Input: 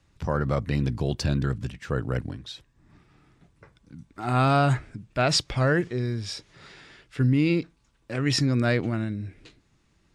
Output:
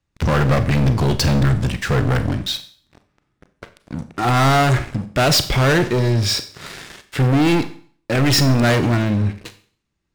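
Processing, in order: waveshaping leveller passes 5; Schroeder reverb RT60 0.48 s, combs from 30 ms, DRR 10.5 dB; trim -1.5 dB

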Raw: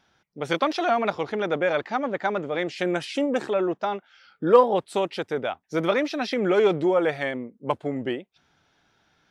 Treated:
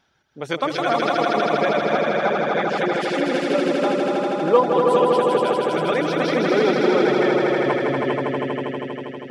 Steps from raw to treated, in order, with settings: echo with a slow build-up 80 ms, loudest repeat 5, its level -3.5 dB; reverb removal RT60 0.58 s

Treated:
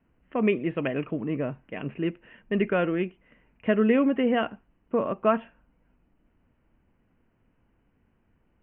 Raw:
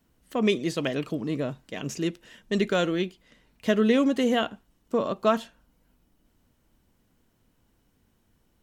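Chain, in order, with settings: steep low-pass 2.8 kHz 72 dB/octave

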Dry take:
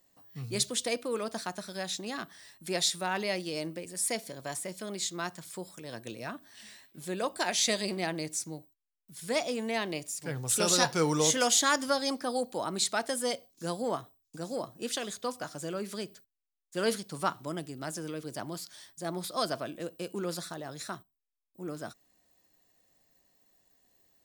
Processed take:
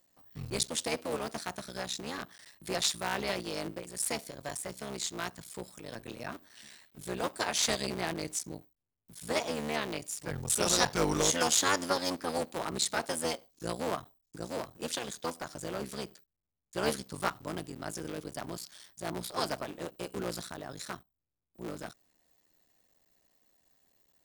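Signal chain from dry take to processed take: cycle switcher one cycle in 3, muted

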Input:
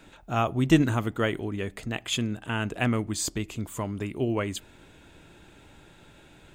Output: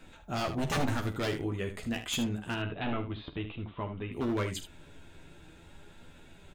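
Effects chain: bass shelf 73 Hz +8.5 dB; wavefolder -21 dBFS; flange 0.49 Hz, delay 3.8 ms, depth 4.1 ms, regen +70%; 2.54–4.12 s: rippled Chebyshev low-pass 3.9 kHz, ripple 3 dB; early reflections 12 ms -5 dB, 48 ms -13.5 dB, 76 ms -10 dB

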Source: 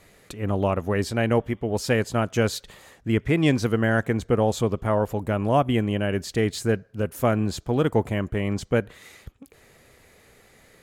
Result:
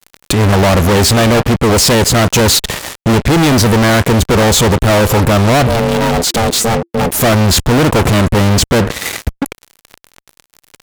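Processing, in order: dynamic bell 2 kHz, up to -4 dB, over -40 dBFS, Q 1.6; fuzz box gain 45 dB, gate -46 dBFS; 5.67–7.21 s: ring modulator 340 Hz; trim +5 dB

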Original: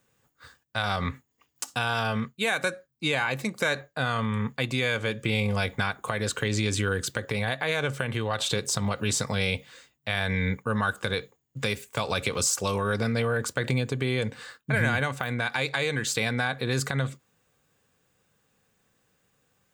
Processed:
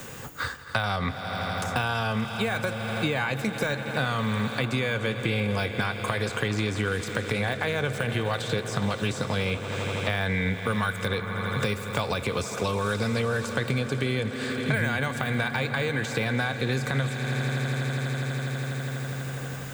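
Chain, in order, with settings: de-esser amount 80%; echo with a slow build-up 82 ms, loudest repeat 5, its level -17.5 dB; three bands compressed up and down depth 100%

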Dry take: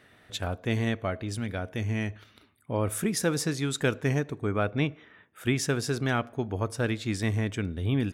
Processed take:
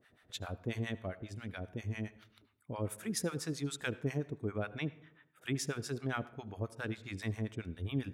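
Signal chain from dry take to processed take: harmonic tremolo 7.4 Hz, depth 100%, crossover 710 Hz; on a send: reverberation RT60 0.65 s, pre-delay 71 ms, DRR 18 dB; on the sum: trim -5.5 dB

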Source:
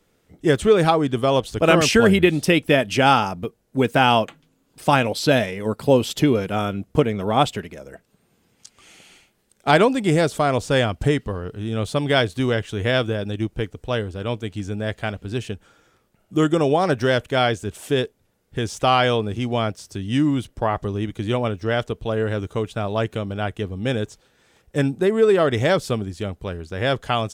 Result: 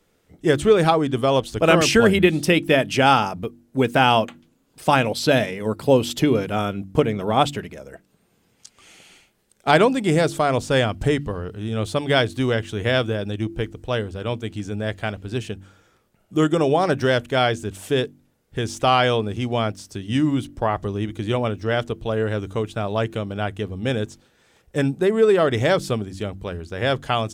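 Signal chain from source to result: de-hum 48.06 Hz, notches 7

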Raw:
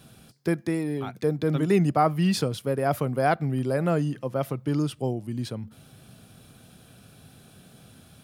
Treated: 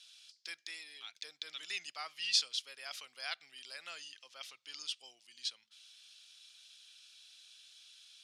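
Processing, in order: Butterworth band-pass 4.4 kHz, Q 1.2; trim +4 dB

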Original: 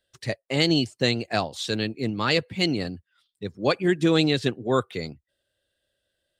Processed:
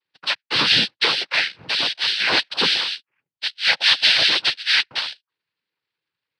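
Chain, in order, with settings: waveshaping leveller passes 2; frequency inversion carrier 3.2 kHz; noise-vocoded speech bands 8; trim -1 dB

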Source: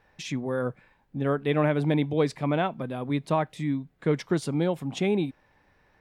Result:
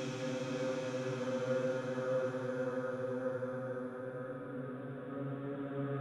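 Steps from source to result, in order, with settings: gated-style reverb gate 230 ms flat, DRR 4 dB; Paulstretch 8.3×, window 1.00 s, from 0.38 s; trim -9 dB

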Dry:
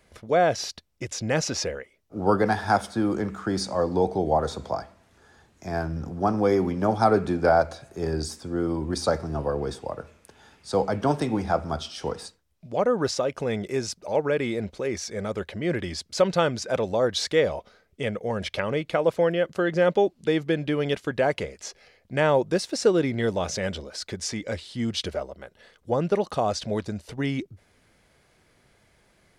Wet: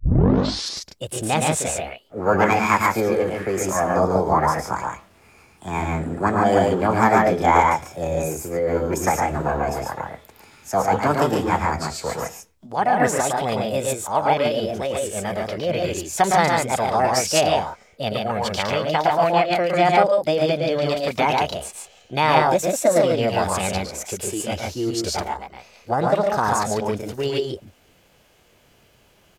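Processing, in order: tape start-up on the opening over 0.88 s; loudspeakers at several distances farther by 38 m -5 dB, 49 m -3 dB; formant shift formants +6 st; trim +2.5 dB

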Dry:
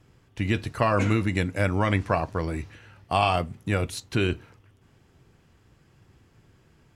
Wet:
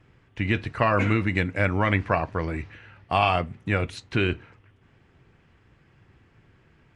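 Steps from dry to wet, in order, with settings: low-pass 2.9 kHz 6 dB/octave; peaking EQ 2.1 kHz +6.5 dB 1.3 oct; Nellymoser 44 kbps 22.05 kHz

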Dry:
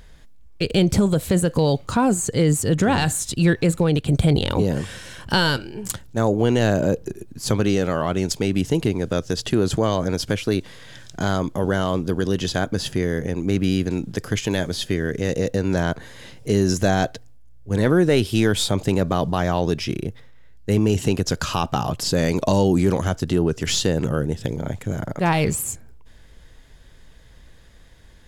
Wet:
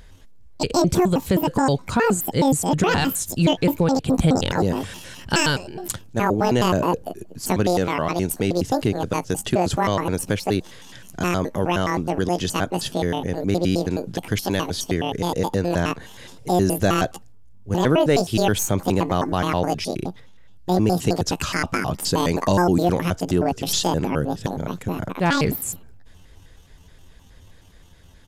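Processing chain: pitch shift switched off and on +10 st, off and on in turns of 105 ms; resampled via 32 kHz

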